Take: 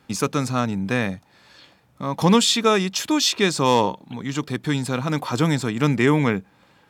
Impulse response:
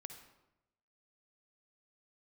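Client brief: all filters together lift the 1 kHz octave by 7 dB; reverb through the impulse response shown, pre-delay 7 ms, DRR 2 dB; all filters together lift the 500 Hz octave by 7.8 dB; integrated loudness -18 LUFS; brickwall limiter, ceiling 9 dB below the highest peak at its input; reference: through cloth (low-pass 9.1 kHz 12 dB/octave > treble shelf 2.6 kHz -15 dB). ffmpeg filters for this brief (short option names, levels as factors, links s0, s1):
-filter_complex "[0:a]equalizer=f=500:t=o:g=8,equalizer=f=1000:t=o:g=8.5,alimiter=limit=0.501:level=0:latency=1,asplit=2[s0][s1];[1:a]atrim=start_sample=2205,adelay=7[s2];[s1][s2]afir=irnorm=-1:irlink=0,volume=1.41[s3];[s0][s3]amix=inputs=2:normalize=0,lowpass=9100,highshelf=f=2600:g=-15"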